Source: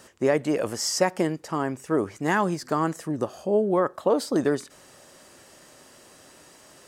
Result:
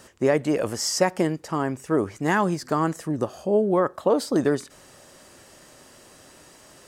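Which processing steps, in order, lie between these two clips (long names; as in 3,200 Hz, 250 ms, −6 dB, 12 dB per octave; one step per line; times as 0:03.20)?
low-shelf EQ 98 Hz +7 dB
level +1 dB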